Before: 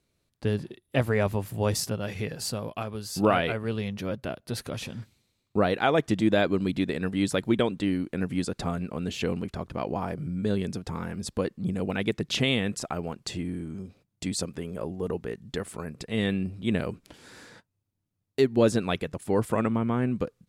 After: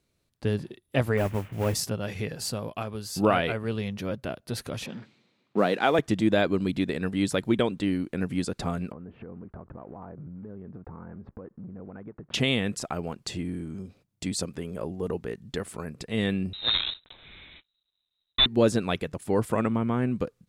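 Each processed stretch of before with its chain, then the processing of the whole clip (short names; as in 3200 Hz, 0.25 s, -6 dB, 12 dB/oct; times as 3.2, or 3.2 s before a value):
1.17–1.74 CVSD 16 kbps + modulation noise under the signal 24 dB
4.86–5.99 G.711 law mismatch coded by mu + HPF 160 Hz 24 dB/oct + low-pass opened by the level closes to 2900 Hz, open at -18.5 dBFS
8.92–12.34 block floating point 5-bit + LPF 1400 Hz 24 dB/oct + compressor 8:1, threshold -38 dBFS
16.53–18.46 block floating point 3-bit + inverted band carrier 3900 Hz + low shelf 130 Hz +11.5 dB
whole clip: dry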